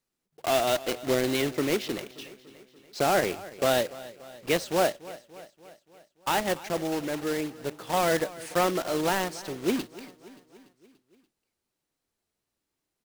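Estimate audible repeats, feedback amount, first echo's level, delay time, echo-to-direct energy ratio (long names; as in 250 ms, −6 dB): 4, 59%, −18.5 dB, 289 ms, −16.5 dB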